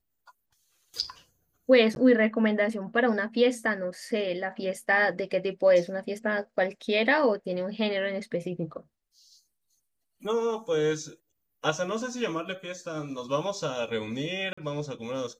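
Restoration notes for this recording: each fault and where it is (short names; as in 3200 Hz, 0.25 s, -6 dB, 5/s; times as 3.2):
1.95–1.96 gap 11 ms
14.53–14.57 gap 45 ms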